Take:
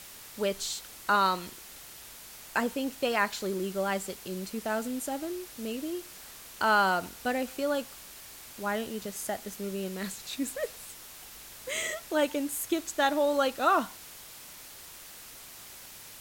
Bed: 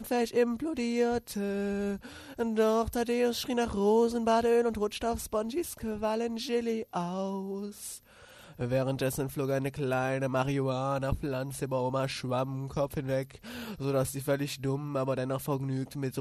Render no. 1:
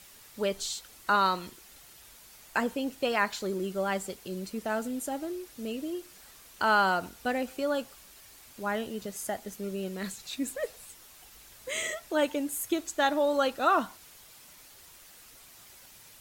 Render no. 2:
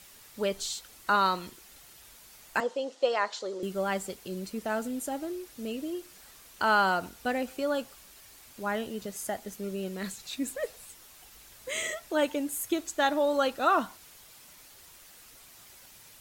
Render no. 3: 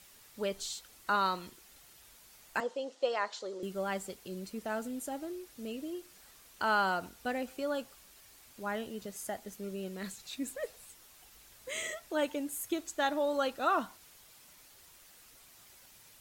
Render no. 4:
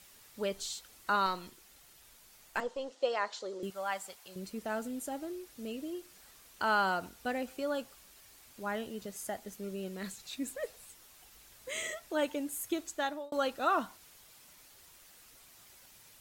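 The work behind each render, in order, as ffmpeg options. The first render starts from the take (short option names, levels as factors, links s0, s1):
-af "afftdn=nr=7:nf=-48"
-filter_complex "[0:a]asettb=1/sr,asplit=3[s0][s1][s2];[s0]atrim=end=2.604[s3];[s1]atrim=start=2.6:end=3.63,asetpts=PTS-STARTPTS,afade=t=in:d=0.004:c=qsin,afade=t=out:st=1.026:d=0.004:c=qsin,highpass=470,equalizer=f=520:t=q:w=4:g=8,equalizer=f=1600:t=q:w=4:g=-5,equalizer=f=2400:t=q:w=4:g=-8,lowpass=f=7100:w=0.5412,lowpass=f=7100:w=1.3066[s4];[s2]atrim=start=3.626[s5];[s3][s4]acrossfade=d=0.004:c1=hsin:c2=qsin[s6];[s6][s5]acrossfade=d=0.004:c1=qsin:c2=hsin"
-af "volume=0.562"
-filter_complex "[0:a]asettb=1/sr,asplit=3[s0][s1][s2];[s0]atrim=end=1.264[s3];[s1]atrim=start=1.26:end=2.91,asetpts=PTS-STARTPTS,afade=t=in:d=0.004:c=qsin,afade=t=out:st=1.646:d=0.004:c=qsin,aeval=exprs='if(lt(val(0),0),0.708*val(0),val(0))':c=same[s4];[s2]atrim=start=2.906[s5];[s3][s4]acrossfade=d=0.004:c1=hsin:c2=qsin[s6];[s6][s5]acrossfade=d=0.004:c1=qsin:c2=hsin,asettb=1/sr,asplit=3[s7][s8][s9];[s7]atrim=end=3.704[s10];[s8]atrim=start=3.7:end=4.36,asetpts=PTS-STARTPTS,afade=t=in:d=0.004:c=qsin,afade=t=out:st=0.656:d=0.004:c=qsin,lowshelf=f=520:t=q:w=1.5:g=-13[s11];[s9]atrim=start=4.356[s12];[s10][s11]acrossfade=d=0.004:c1=hsin:c2=qsin[s13];[s13][s12]acrossfade=d=0.004:c1=qsin:c2=hsin,asplit=2[s14][s15];[s14]atrim=end=13.32,asetpts=PTS-STARTPTS,afade=t=out:st=12.76:d=0.56:c=qsin[s16];[s15]atrim=start=13.32,asetpts=PTS-STARTPTS,afade=t=in:d=0.004:c=hsin[s17];[s16][s17]concat=n=2:v=0:a=1"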